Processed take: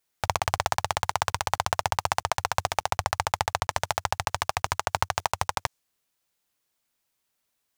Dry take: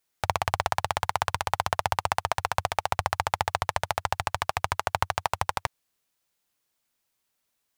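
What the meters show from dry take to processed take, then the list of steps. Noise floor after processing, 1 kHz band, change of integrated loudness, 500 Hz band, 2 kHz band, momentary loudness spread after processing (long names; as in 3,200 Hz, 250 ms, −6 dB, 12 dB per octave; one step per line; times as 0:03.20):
−78 dBFS, 0.0 dB, +0.5 dB, 0.0 dB, +0.5 dB, 2 LU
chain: one scale factor per block 7 bits
dynamic equaliser 6,400 Hz, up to +6 dB, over −53 dBFS, Q 1.2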